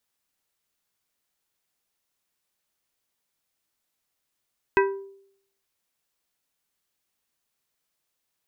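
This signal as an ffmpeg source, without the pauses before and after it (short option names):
-f lavfi -i "aevalsrc='0.168*pow(10,-3*t/0.68)*sin(2*PI*392*t)+0.126*pow(10,-3*t/0.358)*sin(2*PI*980*t)+0.0944*pow(10,-3*t/0.258)*sin(2*PI*1568*t)+0.0708*pow(10,-3*t/0.22)*sin(2*PI*1960*t)+0.0531*pow(10,-3*t/0.183)*sin(2*PI*2548*t)':d=0.89:s=44100"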